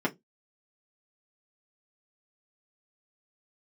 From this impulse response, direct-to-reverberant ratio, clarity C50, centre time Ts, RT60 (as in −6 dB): −3.5 dB, 23.5 dB, 9 ms, 0.15 s